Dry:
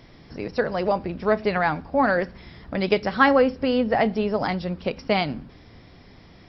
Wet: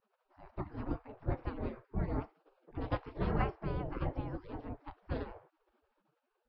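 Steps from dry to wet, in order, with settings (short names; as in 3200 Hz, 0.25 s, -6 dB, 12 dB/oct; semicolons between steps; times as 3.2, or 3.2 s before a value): spectral gate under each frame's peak -25 dB weak; low-pass opened by the level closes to 320 Hz, open at -17 dBFS; gain +12.5 dB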